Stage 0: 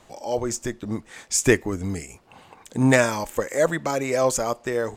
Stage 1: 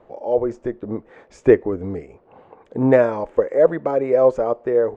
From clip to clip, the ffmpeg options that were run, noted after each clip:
ffmpeg -i in.wav -af "lowpass=1600,equalizer=frequency=470:width=1.2:gain=12,volume=-3dB" out.wav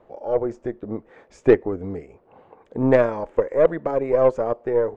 ffmpeg -i in.wav -af "aeval=exprs='0.891*(cos(1*acos(clip(val(0)/0.891,-1,1)))-cos(1*PI/2))+0.0631*(cos(3*acos(clip(val(0)/0.891,-1,1)))-cos(3*PI/2))+0.0316*(cos(6*acos(clip(val(0)/0.891,-1,1)))-cos(6*PI/2))':channel_layout=same,volume=-1dB" out.wav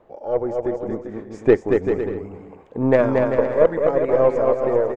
ffmpeg -i in.wav -af "aecho=1:1:230|391|503.7|582.6|637.8:0.631|0.398|0.251|0.158|0.1" out.wav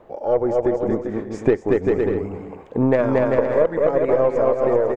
ffmpeg -i in.wav -af "acompressor=threshold=-20dB:ratio=5,volume=6dB" out.wav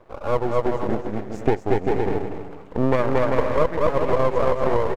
ffmpeg -i in.wav -filter_complex "[0:a]aeval=exprs='max(val(0),0)':channel_layout=same,asplit=2[link_01][link_02];[link_02]aecho=0:1:240:0.299[link_03];[link_01][link_03]amix=inputs=2:normalize=0" out.wav

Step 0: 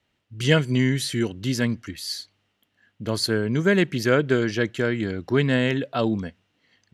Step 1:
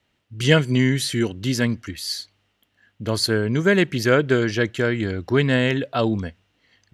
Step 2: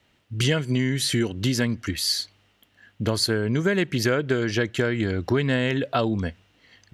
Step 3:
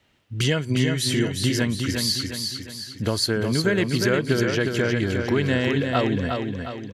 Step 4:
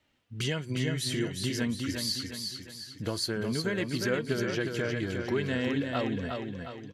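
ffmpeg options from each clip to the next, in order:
ffmpeg -i in.wav -af "asubboost=boost=3.5:cutoff=79,volume=3dB" out.wav
ffmpeg -i in.wav -af "acompressor=threshold=-25dB:ratio=6,volume=5.5dB" out.wav
ffmpeg -i in.wav -af "aecho=1:1:358|716|1074|1432|1790|2148:0.562|0.264|0.124|0.0584|0.0274|0.0129" out.wav
ffmpeg -i in.wav -af "flanger=delay=3.2:depth=3.6:regen=59:speed=0.51:shape=triangular,volume=-4dB" out.wav

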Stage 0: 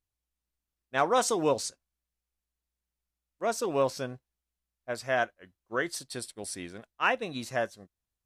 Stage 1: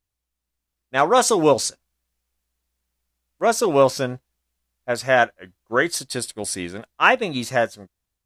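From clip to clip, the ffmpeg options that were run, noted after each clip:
ffmpeg -i in.wav -af "dynaudnorm=framelen=430:gausssize=5:maxgain=6dB,volume=5dB" out.wav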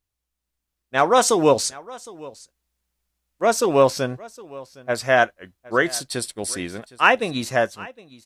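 ffmpeg -i in.wav -af "aecho=1:1:762:0.0891" out.wav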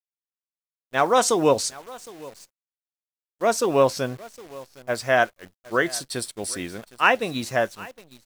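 ffmpeg -i in.wav -af "acrusher=bits=8:dc=4:mix=0:aa=0.000001,volume=-2.5dB" out.wav

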